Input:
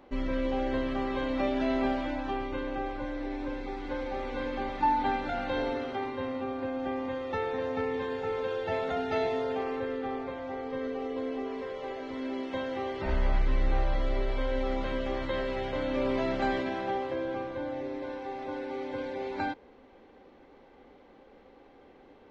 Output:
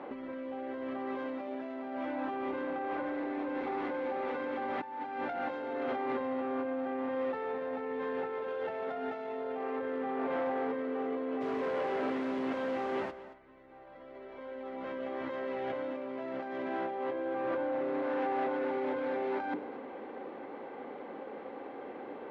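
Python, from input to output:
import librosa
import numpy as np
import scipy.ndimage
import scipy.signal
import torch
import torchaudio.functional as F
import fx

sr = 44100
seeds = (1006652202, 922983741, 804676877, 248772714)

y = fx.tracing_dist(x, sr, depth_ms=0.096)
y = fx.hum_notches(y, sr, base_hz=50, count=8)
y = fx.over_compress(y, sr, threshold_db=-40.0, ratio=-1.0)
y = fx.dmg_noise_colour(y, sr, seeds[0], colour='pink', level_db=-45.0, at=(11.4, 13.1), fade=0.02)
y = np.clip(y, -10.0 ** (-34.0 / 20.0), 10.0 ** (-34.0 / 20.0))
y = fx.bandpass_edges(y, sr, low_hz=230.0, high_hz=2000.0)
y = y + 10.0 ** (-15.5 / 20.0) * np.pad(y, (int(226 * sr / 1000.0), 0))[:len(y)]
y = F.gain(torch.from_numpy(y), 5.5).numpy()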